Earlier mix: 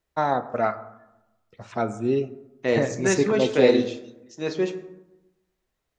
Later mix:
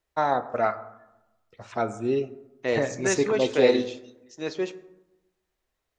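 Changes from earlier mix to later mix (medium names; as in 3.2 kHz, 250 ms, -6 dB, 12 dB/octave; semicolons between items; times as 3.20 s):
second voice: send -7.0 dB; master: add peaking EQ 170 Hz -6 dB 1.5 oct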